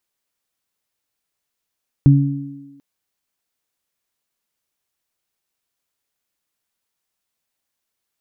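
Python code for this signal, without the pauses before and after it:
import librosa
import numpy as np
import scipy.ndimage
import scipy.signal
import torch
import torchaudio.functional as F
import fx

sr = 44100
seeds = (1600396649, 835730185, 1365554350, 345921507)

y = fx.additive(sr, length_s=0.74, hz=140.0, level_db=-5.0, upper_db=(-7.5,), decay_s=0.87, upper_decays_s=(1.38,))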